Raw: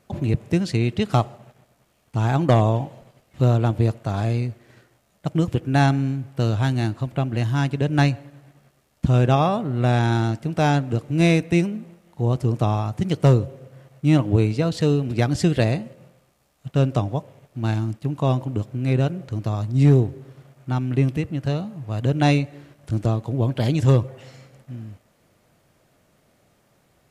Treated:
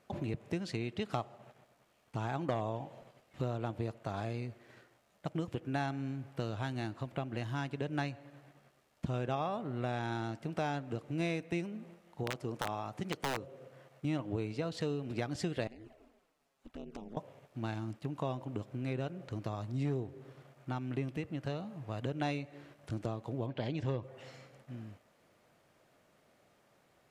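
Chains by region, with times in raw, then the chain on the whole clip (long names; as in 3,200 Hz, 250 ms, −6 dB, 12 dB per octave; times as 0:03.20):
0:12.23–0:14.05: low-shelf EQ 110 Hz −11.5 dB + wrap-around overflow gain 12 dB
0:15.67–0:17.17: ring modulation 110 Hz + downward compressor 12 to 1, threshold −31 dBFS + flanger swept by the level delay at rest 8 ms, full sweep at −31.5 dBFS
0:23.46–0:24.03: low-pass filter 4,200 Hz + parametric band 1,300 Hz −5 dB 0.32 octaves
whole clip: low-shelf EQ 200 Hz −11.5 dB; downward compressor 2.5 to 1, threshold −32 dBFS; high-shelf EQ 5,300 Hz −8 dB; level −3.5 dB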